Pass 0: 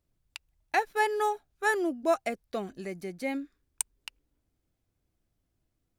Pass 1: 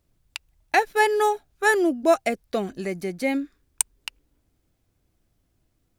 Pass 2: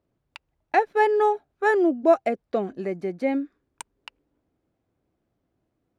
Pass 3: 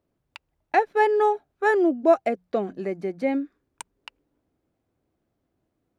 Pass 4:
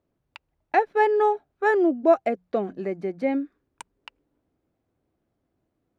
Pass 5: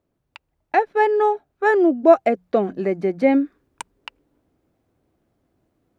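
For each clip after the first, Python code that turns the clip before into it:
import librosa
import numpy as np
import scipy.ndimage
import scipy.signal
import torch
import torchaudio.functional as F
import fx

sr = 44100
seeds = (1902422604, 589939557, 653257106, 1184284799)

y1 = fx.dynamic_eq(x, sr, hz=1100.0, q=1.5, threshold_db=-41.0, ratio=4.0, max_db=-4)
y1 = y1 * 10.0 ** (8.5 / 20.0)
y2 = fx.bandpass_q(y1, sr, hz=480.0, q=0.52)
y2 = y2 * 10.0 ** (1.5 / 20.0)
y3 = fx.hum_notches(y2, sr, base_hz=60, count=3)
y4 = fx.high_shelf(y3, sr, hz=5300.0, db=-8.5)
y5 = fx.rider(y4, sr, range_db=10, speed_s=2.0)
y5 = y5 * 10.0 ** (4.5 / 20.0)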